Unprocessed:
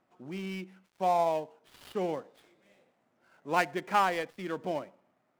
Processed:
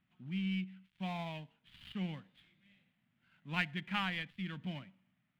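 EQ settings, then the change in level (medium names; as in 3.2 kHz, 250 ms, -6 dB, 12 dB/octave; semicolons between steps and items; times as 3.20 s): FFT filter 190 Hz 0 dB, 430 Hz -28 dB, 1.2 kHz -16 dB, 1.8 kHz -7 dB, 3.2 kHz -1 dB, 5.6 kHz -20 dB; +3.5 dB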